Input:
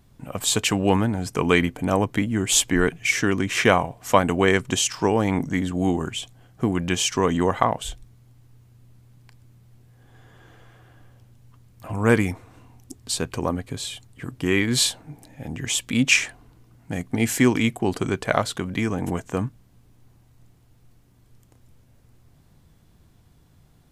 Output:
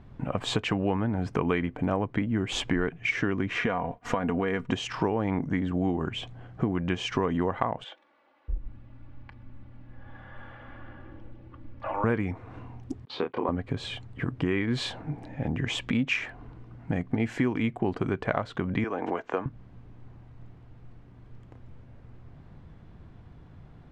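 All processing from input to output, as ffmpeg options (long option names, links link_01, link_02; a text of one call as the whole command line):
ffmpeg -i in.wav -filter_complex "[0:a]asettb=1/sr,asplit=3[link_01][link_02][link_03];[link_01]atrim=end=3.554[link_04];[link_02]atrim=start=3.55:end=4.73,asetpts=PTS-STARTPTS,afade=type=in:duration=0.004:curve=qsin,afade=type=out:start_time=1.176:duration=0.004:curve=qsin,aecho=1:1:4.2:0.48,atrim=end_sample=52038,acompressor=threshold=-22dB:ratio=3:attack=3.2:release=140:knee=1:detection=peak,agate=range=-33dB:threshold=-39dB:ratio=3:release=100:detection=peak[link_05];[link_03]atrim=start=4.726[link_06];[link_04][link_05]acrossfade=duration=0.004:curve1=hsin:curve2=qsin[link_07];[link_07][link_06]acrossfade=duration=0.004:curve1=qsin:curve2=hsin,asettb=1/sr,asplit=3[link_08][link_09][link_10];[link_08]atrim=end=7.844[link_11];[link_09]atrim=start=7.84:end=12.04,asetpts=PTS-STARTPTS,afade=type=in:duration=0.004:curve=qsin,afade=type=out:start_time=4.196:duration=0.004:curve=qsin,lowpass=3700,aecho=1:1:3.5:0.76,atrim=end_sample=185220,acrossover=split=450[link_12][link_13];[link_12]adelay=640[link_14];[link_14][link_13]amix=inputs=2:normalize=0,atrim=end_sample=185220[link_15];[link_10]atrim=start=12.036[link_16];[link_11][link_15]acrossfade=duration=0.004:curve1=hsin:curve2=qsin[link_17];[link_17][link_16]acrossfade=duration=0.004:curve1=qsin:curve2=hsin,asettb=1/sr,asplit=3[link_18][link_19][link_20];[link_18]atrim=end=13.054[link_21];[link_19]atrim=start=13.05:end=13.49,asetpts=PTS-STARTPTS,afade=type=in:duration=0.004:curve=qsin,afade=type=out:start_time=0.436:duration=0.004:curve=qsin,agate=range=-19dB:threshold=-36dB:ratio=16:release=100:detection=peak,highpass=390,equalizer=frequency=630:width_type=q:width=4:gain=-8,equalizer=frequency=1600:width_type=q:width=4:gain=-10,equalizer=frequency=2700:width_type=q:width=4:gain=-7,lowpass=frequency=3500:width=0.5412,lowpass=frequency=3500:width=1.3066,asplit=2[link_22][link_23];[link_23]adelay=27,volume=-3dB[link_24];[link_22][link_24]amix=inputs=2:normalize=0,atrim=end_sample=19404[link_25];[link_20]atrim=start=13.486[link_26];[link_21][link_25]acrossfade=duration=0.004:curve1=hsin:curve2=qsin[link_27];[link_27][link_26]acrossfade=duration=0.004:curve1=qsin:curve2=hsin,asettb=1/sr,asplit=3[link_28][link_29][link_30];[link_28]atrim=end=18.844[link_31];[link_29]atrim=start=18.84:end=19.46,asetpts=PTS-STARTPTS,afade=type=in:duration=0.004:curve=qsin,afade=type=out:start_time=0.616:duration=0.004:curve=qsin,acrossover=split=330 6500:gain=0.0631 1 0.0794[link_32][link_33][link_34];[link_32][link_33][link_34]amix=inputs=3:normalize=0,bandreject=frequency=1900:width=25[link_35];[link_30]atrim=start=19.456[link_36];[link_31][link_35]acrossfade=duration=0.004:curve1=hsin:curve2=qsin[link_37];[link_37][link_36]acrossfade=duration=0.004:curve1=qsin:curve2=hsin,lowpass=2100,acompressor=threshold=-33dB:ratio=4,volume=7dB" out.wav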